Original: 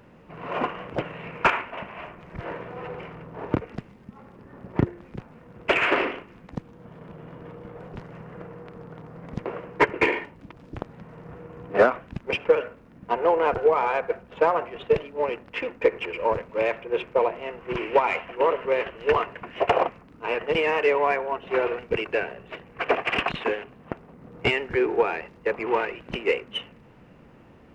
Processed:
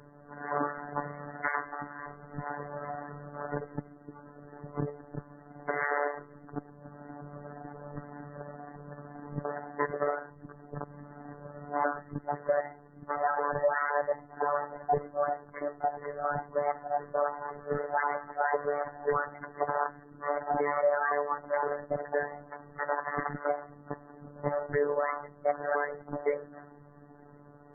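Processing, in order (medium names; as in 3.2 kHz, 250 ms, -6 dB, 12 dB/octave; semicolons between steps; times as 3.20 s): sawtooth pitch modulation +9 st, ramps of 515 ms; steep low-pass 2 kHz 96 dB/octave; peak limiter -18.5 dBFS, peak gain reduction 11 dB; loudest bins only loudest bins 64; robot voice 145 Hz; trim +1 dB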